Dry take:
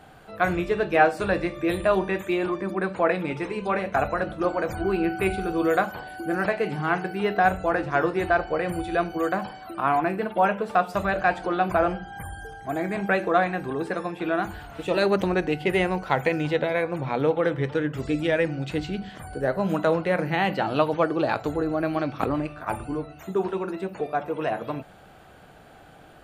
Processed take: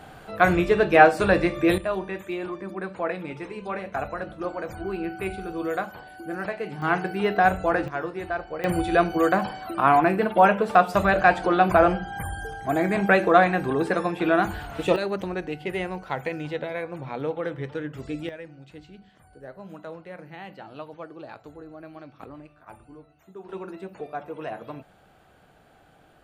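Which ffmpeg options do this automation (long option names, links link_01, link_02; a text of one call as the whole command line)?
ffmpeg -i in.wav -af "asetnsamples=nb_out_samples=441:pad=0,asendcmd='1.78 volume volume -6dB;6.82 volume volume 1dB;7.88 volume volume -7.5dB;8.64 volume volume 4.5dB;14.96 volume volume -6.5dB;18.29 volume volume -17dB;23.49 volume volume -7dB',volume=4.5dB" out.wav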